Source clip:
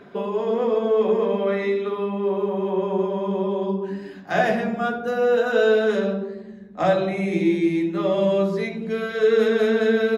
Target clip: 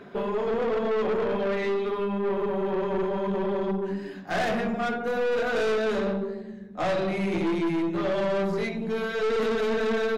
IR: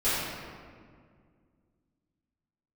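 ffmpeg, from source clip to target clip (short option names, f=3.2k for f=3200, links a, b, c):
-af "aeval=exprs='(tanh(15.8*val(0)+0.3)-tanh(0.3))/15.8':c=same,volume=1dB"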